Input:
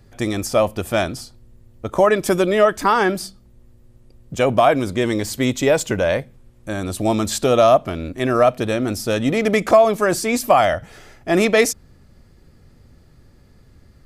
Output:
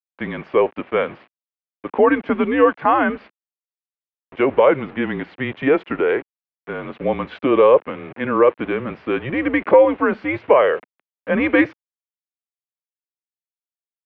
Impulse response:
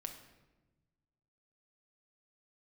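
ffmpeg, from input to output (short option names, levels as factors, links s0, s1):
-af "aeval=exprs='val(0)*gte(abs(val(0)),0.0251)':c=same,highpass=f=380:t=q:w=0.5412,highpass=f=380:t=q:w=1.307,lowpass=f=2800:t=q:w=0.5176,lowpass=f=2800:t=q:w=0.7071,lowpass=f=2800:t=q:w=1.932,afreqshift=-140,volume=1.12"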